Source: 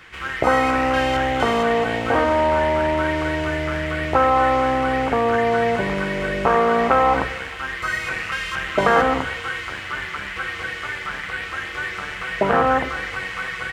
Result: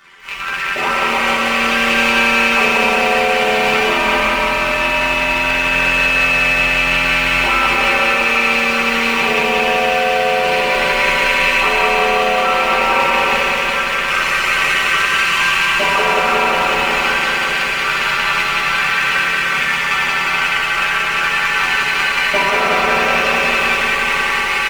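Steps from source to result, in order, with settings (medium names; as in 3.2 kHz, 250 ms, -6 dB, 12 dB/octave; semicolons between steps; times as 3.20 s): rattle on loud lows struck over -38 dBFS, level -9 dBFS; peaking EQ 1.1 kHz +7 dB 0.4 oct; on a send: delay 166 ms -4.5 dB; on the sum: FDN reverb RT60 0.75 s, low-frequency decay 1×, high-frequency decay 0.85×, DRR -5.5 dB; peak limiter -5.5 dBFS, peak gain reduction 11.5 dB; tilt EQ +1.5 dB/octave; level rider; granular stretch 1.8×, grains 23 ms; bit-crushed delay 181 ms, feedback 80%, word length 7-bit, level -3.5 dB; trim -4.5 dB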